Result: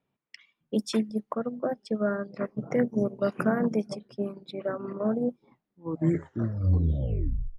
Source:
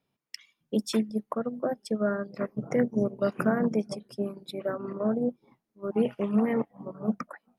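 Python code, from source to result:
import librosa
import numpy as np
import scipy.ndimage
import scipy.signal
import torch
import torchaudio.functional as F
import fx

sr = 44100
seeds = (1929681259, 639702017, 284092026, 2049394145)

y = fx.tape_stop_end(x, sr, length_s=2.06)
y = fx.env_lowpass(y, sr, base_hz=2700.0, full_db=-22.5)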